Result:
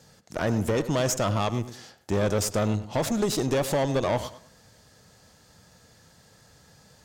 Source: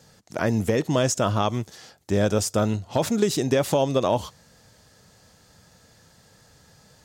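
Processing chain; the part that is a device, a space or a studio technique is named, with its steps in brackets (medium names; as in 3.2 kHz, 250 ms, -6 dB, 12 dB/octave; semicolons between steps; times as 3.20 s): rockabilly slapback (valve stage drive 21 dB, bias 0.55; tape echo 101 ms, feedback 33%, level -11 dB, low-pass 2.3 kHz); trim +1.5 dB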